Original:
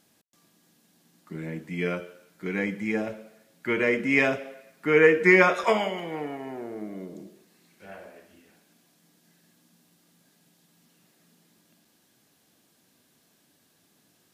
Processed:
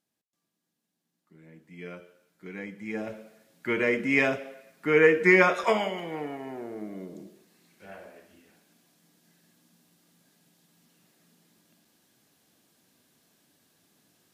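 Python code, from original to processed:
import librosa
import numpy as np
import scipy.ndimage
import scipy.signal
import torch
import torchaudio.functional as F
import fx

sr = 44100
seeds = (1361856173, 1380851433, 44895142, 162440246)

y = fx.gain(x, sr, db=fx.line((1.36, -19.0), (2.06, -10.5), (2.75, -10.5), (3.16, -1.5)))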